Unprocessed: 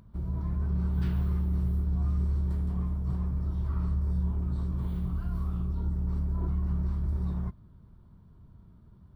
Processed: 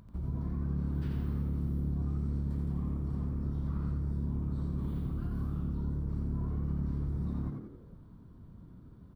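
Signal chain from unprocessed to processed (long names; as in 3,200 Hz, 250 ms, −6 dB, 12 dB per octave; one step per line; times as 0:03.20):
downward compressor 3 to 1, threshold −34 dBFS, peak gain reduction 8 dB
echo with shifted repeats 87 ms, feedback 44%, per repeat +71 Hz, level −4 dB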